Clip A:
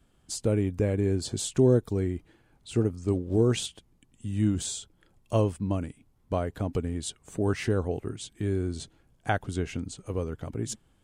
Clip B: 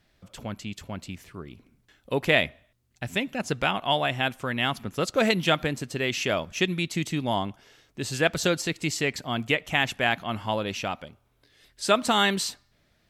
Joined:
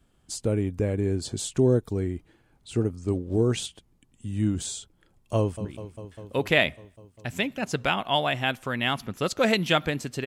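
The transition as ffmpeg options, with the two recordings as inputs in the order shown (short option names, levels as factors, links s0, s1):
-filter_complex "[0:a]apad=whole_dur=10.26,atrim=end=10.26,atrim=end=5.652[s0];[1:a]atrim=start=1.418:end=6.03[s1];[s0][s1]acrossfade=d=0.004:c1=hsin:c2=hsin,asplit=2[s2][s3];[s3]afade=t=in:st=5.37:d=0.01,afade=t=out:st=5.65:d=0.01,aecho=0:1:200|400|600|800|1000|1200|1400|1600|1800|2000|2200|2400:0.251189|0.200951|0.160761|0.128609|0.102887|0.0823095|0.0658476|0.0526781|0.0421425|0.033714|0.0269712|0.0215769[s4];[s2][s4]amix=inputs=2:normalize=0"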